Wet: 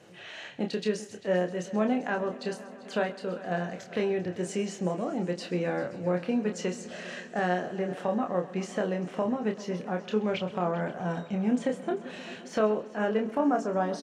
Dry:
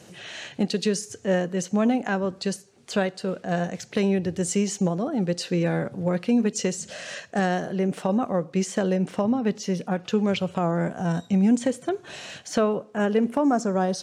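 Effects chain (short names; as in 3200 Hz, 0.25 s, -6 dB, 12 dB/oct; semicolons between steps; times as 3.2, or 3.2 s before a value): tone controls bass -7 dB, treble -11 dB; doubler 28 ms -5 dB; multi-head echo 0.131 s, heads first and third, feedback 71%, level -19 dB; gain -4 dB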